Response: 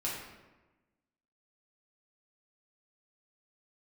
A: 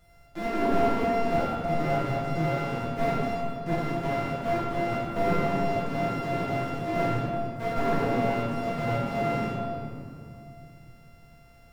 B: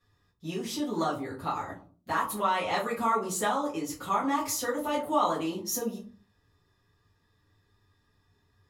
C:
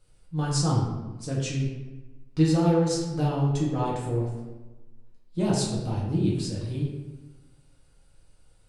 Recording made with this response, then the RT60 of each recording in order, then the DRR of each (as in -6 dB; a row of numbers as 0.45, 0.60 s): C; 2.5, 0.45, 1.1 s; -8.5, -9.0, -6.0 dB